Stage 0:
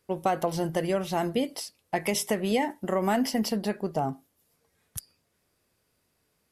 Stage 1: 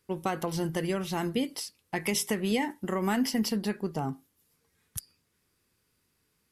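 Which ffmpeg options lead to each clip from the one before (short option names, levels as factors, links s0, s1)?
-af "equalizer=f=640:w=2.1:g=-10.5"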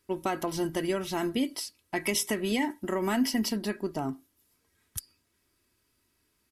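-af "aecho=1:1:3.1:0.49"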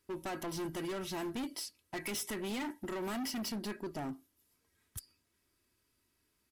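-af "volume=35.5,asoftclip=hard,volume=0.0282,volume=0.596"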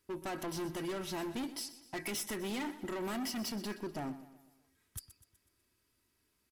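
-af "aecho=1:1:124|248|372|496|620:0.178|0.0889|0.0445|0.0222|0.0111"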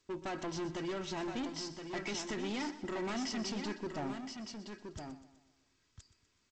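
-af "aecho=1:1:1020:0.447" -ar 16000 -c:a g722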